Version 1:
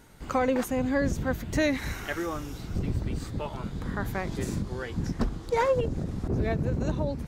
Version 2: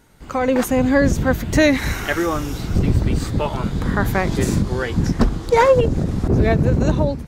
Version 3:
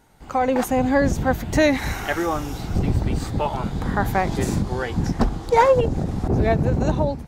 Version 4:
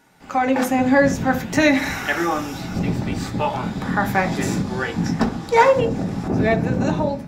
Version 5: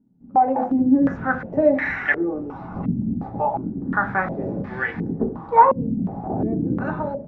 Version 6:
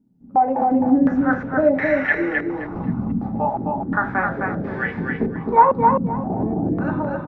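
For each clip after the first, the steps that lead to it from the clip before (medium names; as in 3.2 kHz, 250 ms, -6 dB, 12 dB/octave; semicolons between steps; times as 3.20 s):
level rider gain up to 12.5 dB
peaking EQ 790 Hz +8.5 dB 0.47 oct; trim -4 dB
reverberation RT60 0.45 s, pre-delay 3 ms, DRR 4.5 dB
step-sequenced low-pass 2.8 Hz 230–1900 Hz; trim -7 dB
feedback delay 261 ms, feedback 22%, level -3.5 dB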